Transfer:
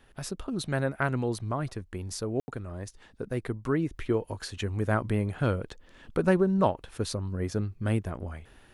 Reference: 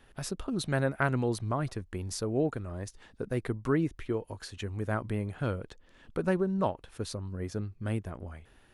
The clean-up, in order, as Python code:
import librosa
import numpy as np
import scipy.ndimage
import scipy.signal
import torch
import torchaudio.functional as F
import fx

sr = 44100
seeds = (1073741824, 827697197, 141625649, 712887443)

y = fx.fix_ambience(x, sr, seeds[0], print_start_s=5.66, print_end_s=6.16, start_s=2.4, end_s=2.48)
y = fx.gain(y, sr, db=fx.steps((0.0, 0.0), (3.91, -5.0)))